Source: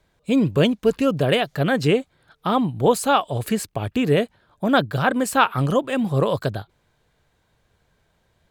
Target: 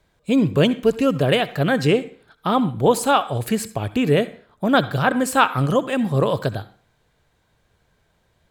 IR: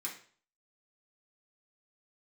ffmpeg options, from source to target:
-filter_complex "[0:a]asplit=2[a][b];[1:a]atrim=start_sample=2205,adelay=64[c];[b][c]afir=irnorm=-1:irlink=0,volume=-15dB[d];[a][d]amix=inputs=2:normalize=0,volume=1dB"

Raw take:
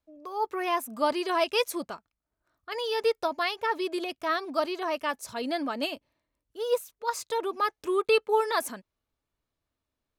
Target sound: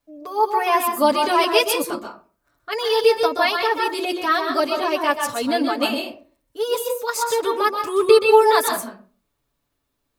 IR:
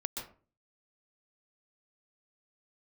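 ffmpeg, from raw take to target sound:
-filter_complex "[0:a]asplit=2[a][b];[1:a]atrim=start_sample=2205,highshelf=f=8.4k:g=9.5,adelay=7[c];[b][c]afir=irnorm=-1:irlink=0,volume=0dB[d];[a][d]amix=inputs=2:normalize=0,volume=5.5dB"

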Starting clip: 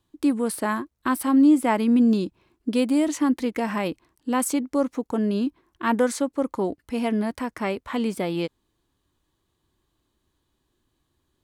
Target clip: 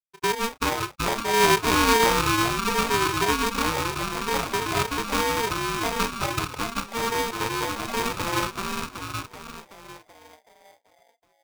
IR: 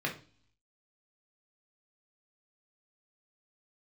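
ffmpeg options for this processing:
-filter_complex "[0:a]asplit=3[a][b][c];[a]afade=t=out:st=6.06:d=0.02[d];[b]highpass=560,afade=t=in:st=6.06:d=0.02,afade=t=out:st=6.94:d=0.02[e];[c]afade=t=in:st=6.94:d=0.02[f];[d][e][f]amix=inputs=3:normalize=0,afftfilt=real='re*gte(hypot(re,im),0.1)':imag='im*gte(hypot(re,im),0.1)':win_size=1024:overlap=0.75,asplit=2[g][h];[h]acompressor=threshold=-33dB:ratio=8,volume=1.5dB[i];[g][i]amix=inputs=2:normalize=0,asplit=2[j][k];[k]adelay=29,volume=-10dB[l];[j][l]amix=inputs=2:normalize=0,asplit=9[m][n][o][p][q][r][s][t][u];[n]adelay=379,afreqshift=120,volume=-3dB[v];[o]adelay=758,afreqshift=240,volume=-8dB[w];[p]adelay=1137,afreqshift=360,volume=-13.1dB[x];[q]adelay=1516,afreqshift=480,volume=-18.1dB[y];[r]adelay=1895,afreqshift=600,volume=-23.1dB[z];[s]adelay=2274,afreqshift=720,volume=-28.2dB[aa];[t]adelay=2653,afreqshift=840,volume=-33.2dB[ab];[u]adelay=3032,afreqshift=960,volume=-38.3dB[ac];[m][v][w][x][y][z][aa][ab][ac]amix=inputs=9:normalize=0,acrusher=samples=38:mix=1:aa=0.000001,aresample=16000,aresample=44100,aeval=exprs='val(0)*sgn(sin(2*PI*690*n/s))':c=same,volume=-5.5dB"

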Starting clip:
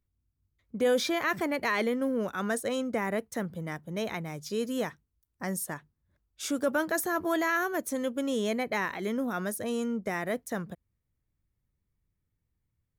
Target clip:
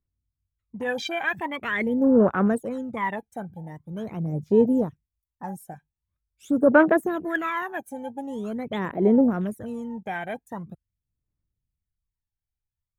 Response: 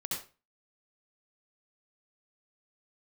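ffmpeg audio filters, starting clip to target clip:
-af "afwtdn=0.0178,aphaser=in_gain=1:out_gain=1:delay=1.3:decay=0.8:speed=0.44:type=sinusoidal,equalizer=f=4.8k:t=o:w=0.67:g=-9"

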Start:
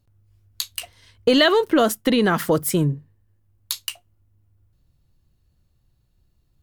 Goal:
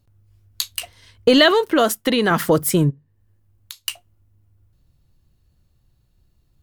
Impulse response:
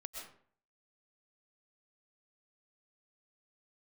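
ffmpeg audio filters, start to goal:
-filter_complex "[0:a]asettb=1/sr,asplit=3[a][b][c];[a]atrim=end=1.514[d];[b]atrim=start=1.51:end=2.31,asetpts=PTS-STARTPTS,afade=t=in:d=0.004:c=qsin,afade=t=out:st=0.796:d=0.004:c=qsin,lowshelf=f=340:g=-7[e];[c]atrim=start=2.306[f];[d][e]acrossfade=d=0.004:c1=hsin:c2=qsin[g];[g][f]acrossfade=d=0.004:c1=qsin:c2=hsin,asplit=3[h][i][j];[h]afade=t=out:st=2.89:d=0.02[k];[i]acompressor=threshold=-37dB:ratio=12,afade=t=in:st=2.89:d=0.02,afade=t=out:st=3.85:d=0.02[l];[j]afade=t=in:st=3.85:d=0.02[m];[k][l][m]amix=inputs=3:normalize=0,volume=3dB"

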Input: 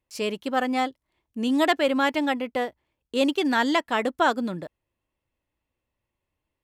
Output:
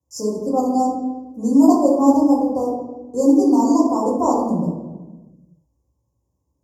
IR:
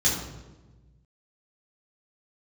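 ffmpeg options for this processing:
-filter_complex "[0:a]asuperstop=centerf=2400:order=20:qfactor=0.62[a];[1:a]atrim=start_sample=2205,asetrate=43659,aresample=44100[b];[a][b]afir=irnorm=-1:irlink=0,volume=-7dB"

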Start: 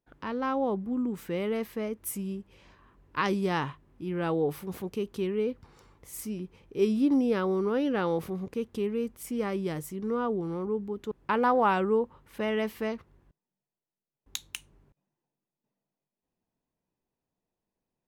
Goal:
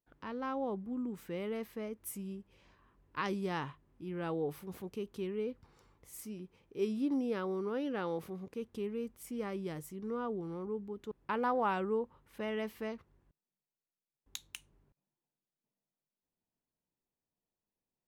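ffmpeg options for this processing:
-filter_complex "[0:a]asettb=1/sr,asplit=3[a][b][c];[a]atrim=end=6.164[d];[b]atrim=start=6.16:end=8.62,asetpts=PTS-STARTPTS,afade=t=in:d=0.004:c=qsin,afade=t=out:st=2.456:d=0.004:c=qsin,lowshelf=f=92:g=-8[e];[c]atrim=start=8.616[f];[d][e]acrossfade=d=0.004:c1=hsin:c2=qsin[g];[g][f]acrossfade=d=0.004:c1=qsin:c2=hsin,volume=-8dB"

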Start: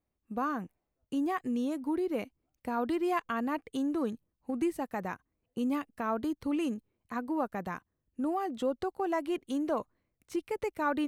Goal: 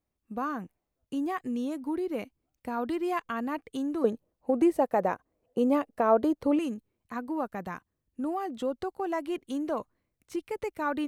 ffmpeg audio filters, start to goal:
-filter_complex "[0:a]asettb=1/sr,asplit=3[a][b][c];[a]atrim=end=4.044[d];[b]atrim=start=4.04:end=6.59,asetpts=PTS-STARTPTS,afade=t=in:d=0.004:c=qsin,afade=t=out:st=2.546:d=0.004:c=qsin,equalizer=f=570:t=o:w=1.5:g=14.5[e];[c]atrim=start=6.586[f];[d][e]acrossfade=d=0.004:c1=hsin:c2=qsin[g];[g][f]acrossfade=d=0.004:c1=qsin:c2=hsin"

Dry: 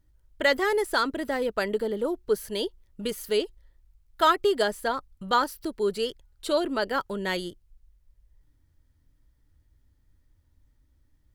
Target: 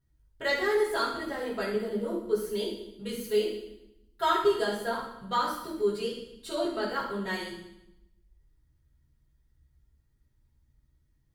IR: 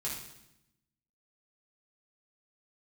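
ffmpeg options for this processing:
-filter_complex "[1:a]atrim=start_sample=2205[a];[0:a][a]afir=irnorm=-1:irlink=0,volume=-6.5dB"

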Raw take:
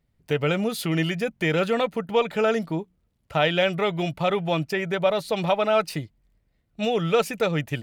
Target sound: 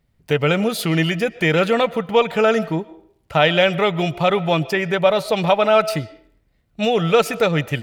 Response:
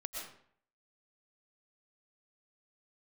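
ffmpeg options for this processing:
-filter_complex "[0:a]asplit=2[a][b];[b]highpass=f=280:w=0.5412,highpass=f=280:w=1.3066[c];[1:a]atrim=start_sample=2205,lowpass=5.6k[d];[c][d]afir=irnorm=-1:irlink=0,volume=-14dB[e];[a][e]amix=inputs=2:normalize=0,volume=5.5dB"

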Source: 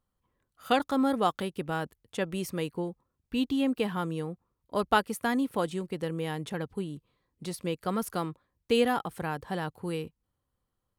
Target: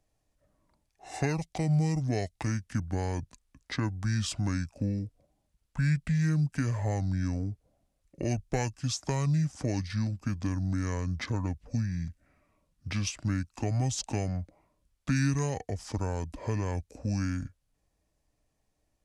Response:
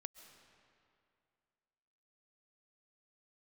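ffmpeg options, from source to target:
-filter_complex "[0:a]asetrate=25442,aresample=44100,acrossover=split=130|3000[a][b][c];[b]acompressor=threshold=-39dB:ratio=4[d];[a][d][c]amix=inputs=3:normalize=0,volume=6dB"

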